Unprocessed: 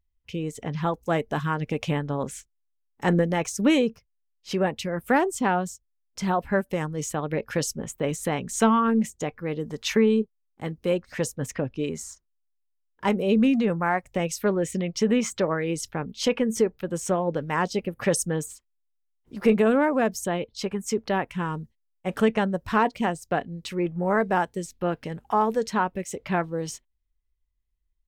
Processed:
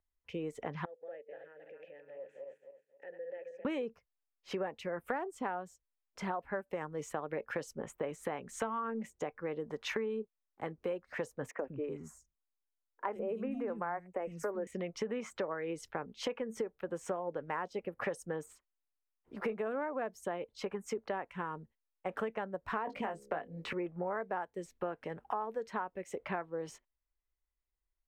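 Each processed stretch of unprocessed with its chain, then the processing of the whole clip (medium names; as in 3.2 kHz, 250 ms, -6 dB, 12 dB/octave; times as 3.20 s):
0.85–3.65 s: backward echo that repeats 133 ms, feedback 50%, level -7 dB + compression, threshold -33 dBFS + vowel filter e
11.51–14.67 s: peaking EQ 3.7 kHz -12.5 dB 1.3 oct + three bands offset in time mids, highs, lows 80/110 ms, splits 240/3500 Hz
22.87–23.73 s: doubling 19 ms -3.5 dB + de-hum 68.78 Hz, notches 8 + three bands compressed up and down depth 100%
whole clip: three-band isolator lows -13 dB, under 360 Hz, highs -16 dB, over 2.2 kHz; compression 6:1, threshold -34 dBFS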